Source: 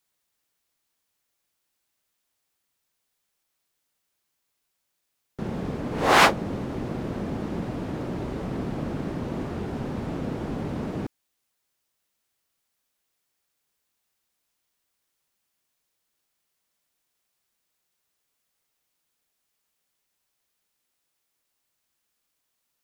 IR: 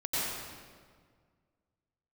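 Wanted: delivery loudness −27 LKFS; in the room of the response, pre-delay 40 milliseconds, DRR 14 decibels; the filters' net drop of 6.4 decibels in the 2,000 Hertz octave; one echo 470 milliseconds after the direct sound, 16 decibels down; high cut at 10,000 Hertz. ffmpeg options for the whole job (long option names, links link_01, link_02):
-filter_complex "[0:a]lowpass=10000,equalizer=frequency=2000:width_type=o:gain=-8.5,aecho=1:1:470:0.158,asplit=2[link_01][link_02];[1:a]atrim=start_sample=2205,adelay=40[link_03];[link_02][link_03]afir=irnorm=-1:irlink=0,volume=-22dB[link_04];[link_01][link_04]amix=inputs=2:normalize=0,volume=1.5dB"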